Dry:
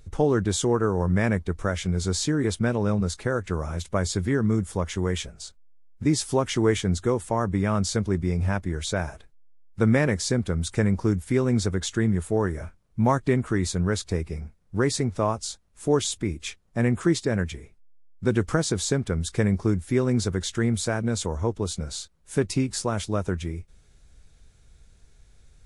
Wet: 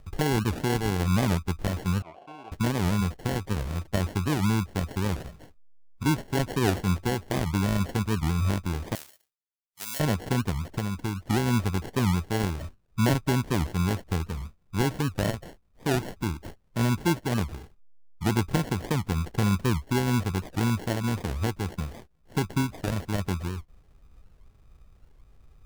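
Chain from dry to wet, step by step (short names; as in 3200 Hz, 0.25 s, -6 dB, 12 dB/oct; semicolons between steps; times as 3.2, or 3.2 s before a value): median filter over 9 samples; dynamic EQ 500 Hz, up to -7 dB, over -38 dBFS, Q 1.1; sample-and-hold 36×; 2.03–2.52 vowel filter a; 8.96–10 differentiator; 10.51–11.29 compressor 6:1, threshold -26 dBFS, peak gain reduction 8 dB; record warp 78 rpm, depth 250 cents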